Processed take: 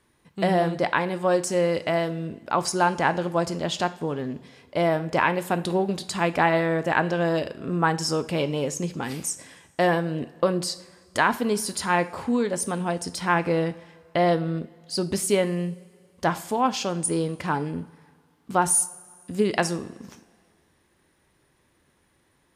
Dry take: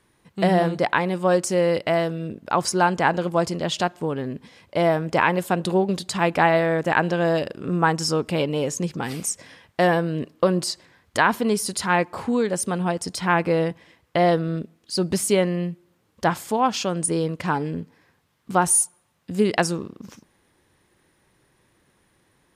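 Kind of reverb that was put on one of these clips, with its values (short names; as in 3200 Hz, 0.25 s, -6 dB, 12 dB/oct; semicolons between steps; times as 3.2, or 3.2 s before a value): two-slope reverb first 0.43 s, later 2.1 s, from -17 dB, DRR 11 dB; gain -2.5 dB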